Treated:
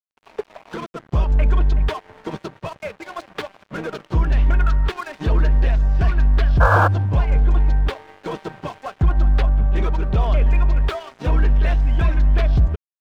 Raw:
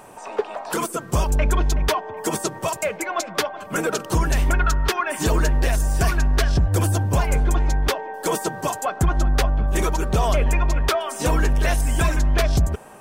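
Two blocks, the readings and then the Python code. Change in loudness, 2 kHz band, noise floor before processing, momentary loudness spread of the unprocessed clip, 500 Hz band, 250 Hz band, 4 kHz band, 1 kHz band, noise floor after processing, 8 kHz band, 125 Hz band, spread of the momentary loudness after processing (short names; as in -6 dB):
+3.0 dB, -1.0 dB, -38 dBFS, 6 LU, -3.5 dB, -2.0 dB, -7.5 dB, -1.0 dB, -63 dBFS, under -20 dB, +3.0 dB, 15 LU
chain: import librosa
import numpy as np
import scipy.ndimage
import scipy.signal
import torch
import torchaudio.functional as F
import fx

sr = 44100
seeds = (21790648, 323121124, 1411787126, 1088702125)

y = scipy.signal.sosfilt(scipy.signal.butter(4, 3900.0, 'lowpass', fs=sr, output='sos'), x)
y = fx.low_shelf(y, sr, hz=180.0, db=10.0)
y = fx.spec_paint(y, sr, seeds[0], shape='noise', start_s=6.6, length_s=0.28, low_hz=450.0, high_hz=1700.0, level_db=-11.0)
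y = fx.cheby_harmonics(y, sr, harmonics=(6, 8), levels_db=(-33, -32), full_scale_db=3.0)
y = np.sign(y) * np.maximum(np.abs(y) - 10.0 ** (-31.5 / 20.0), 0.0)
y = y * librosa.db_to_amplitude(-4.5)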